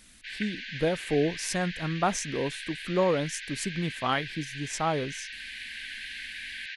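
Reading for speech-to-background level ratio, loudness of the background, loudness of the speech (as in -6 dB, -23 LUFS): 7.5 dB, -38.0 LUFS, -30.5 LUFS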